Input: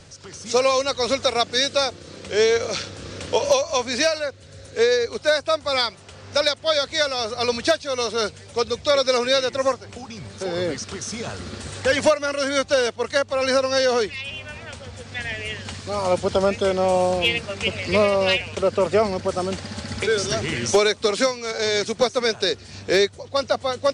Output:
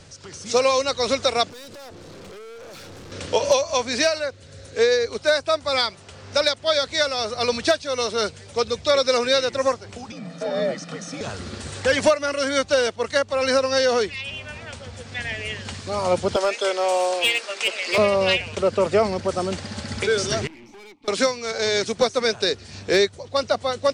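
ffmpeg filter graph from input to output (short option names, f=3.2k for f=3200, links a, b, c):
-filter_complex "[0:a]asettb=1/sr,asplit=3[a][b][c];[a]atrim=end=1.494[d];[b]atrim=start=1.49:end=3.12,asetpts=PTS-STARTPTS,afade=t=in:d=0.004:c=qsin,afade=t=out:st=1.626:d=0.004:c=qsin,equalizer=f=350:w=0.32:g=7,acompressor=threshold=-27dB:ratio=4:attack=3.2:release=140:knee=1:detection=peak,aeval=exprs='(tanh(89.1*val(0)+0.25)-tanh(0.25))/89.1':c=same[e];[c]atrim=start=3.116[f];[d][e]acrossfade=d=0.004:c1=hsin:c2=qsin[g];[g][f]acrossfade=d=0.004:c1=qsin:c2=hsin,asettb=1/sr,asplit=3[h][i][j];[h]atrim=end=10.124[k];[i]atrim=start=10.12:end=11.21,asetpts=PTS-STARTPTS,afade=t=in:d=0.004:c=qsin,afade=t=out:st=1.086:d=0.004:c=qsin,highshelf=f=3.8k:g=-11,aecho=1:1:1.7:0.6,atrim=end_sample=48069,afreqshift=74[l];[j]atrim=start=11.206[m];[k][l]acrossfade=d=0.004:c1=hsin:c2=qsin[n];[n][m]acrossfade=d=0.004:c1=qsin:c2=hsin,asettb=1/sr,asplit=3[o][p][q];[o]atrim=end=16.364[r];[p]atrim=start=16.36:end=17.98,asetpts=PTS-STARTPTS,afade=t=in:d=0.004:c=qsin,afade=t=out:st=1.616:d=0.004:c=qsin,highpass=f=350:w=0.5412,highpass=f=350:w=1.3066,tiltshelf=f=860:g=-4,asoftclip=type=hard:threshold=-14dB[s];[q]atrim=start=17.976[t];[r][s]acrossfade=d=0.004:c1=hsin:c2=qsin[u];[u][t]acrossfade=d=0.004:c1=qsin:c2=hsin,asettb=1/sr,asplit=3[v][w][x];[v]atrim=end=20.474[y];[w]atrim=start=20.47:end=21.08,asetpts=PTS-STARTPTS,afade=t=in:d=0.004:c=qsin,afade=t=out:st=0.606:d=0.004:c=qsin,asplit=3[z][aa][ab];[z]bandpass=f=300:t=q:w=8,volume=0dB[ac];[aa]bandpass=f=870:t=q:w=8,volume=-6dB[ad];[ab]bandpass=f=2.24k:t=q:w=8,volume=-9dB[ae];[ac][ad][ae]amix=inputs=3:normalize=0,aeval=exprs='(tanh(126*val(0)+0.4)-tanh(0.4))/126':c=same[af];[x]atrim=start=21.076[ag];[y][af]acrossfade=d=0.004:c1=hsin:c2=qsin[ah];[ah][ag]acrossfade=d=0.004:c1=qsin:c2=hsin"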